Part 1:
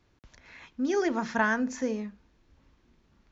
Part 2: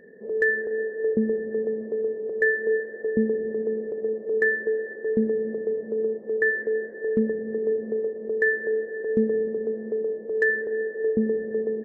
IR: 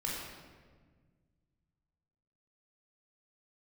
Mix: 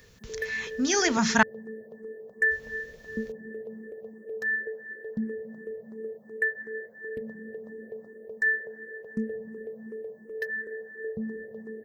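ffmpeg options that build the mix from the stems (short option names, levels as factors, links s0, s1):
-filter_complex "[0:a]tiltshelf=f=690:g=-3.5,volume=1.33,asplit=3[s0][s1][s2];[s0]atrim=end=1.43,asetpts=PTS-STARTPTS,afade=t=out:st=1.426:d=0.004:c=hsin[s3];[s1]atrim=start=1.43:end=2.51,asetpts=PTS-STARTPTS,volume=0[s4];[s2]atrim=start=2.51,asetpts=PTS-STARTPTS,afade=t=in:d=0.004:c=hsin[s5];[s3][s4][s5]concat=n=3:v=0:a=1[s6];[1:a]lowshelf=f=460:g=-11.5,asplit=2[s7][s8];[s8]afreqshift=2.8[s9];[s7][s9]amix=inputs=2:normalize=1,volume=0.708[s10];[s6][s10]amix=inputs=2:normalize=0,lowshelf=f=240:t=q:w=1.5:g=9,crystalizer=i=4.5:c=0"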